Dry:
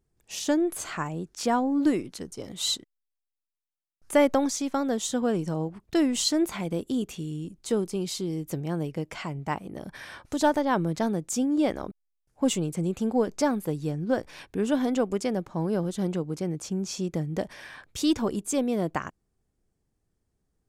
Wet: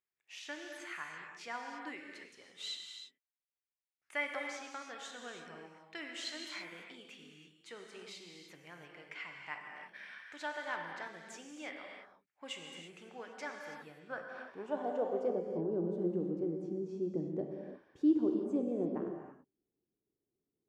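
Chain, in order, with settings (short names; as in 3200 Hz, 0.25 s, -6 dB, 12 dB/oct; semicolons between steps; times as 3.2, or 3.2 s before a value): band-pass sweep 2100 Hz -> 340 Hz, 13.73–15.63; non-linear reverb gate 0.36 s flat, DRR 1.5 dB; gain -4 dB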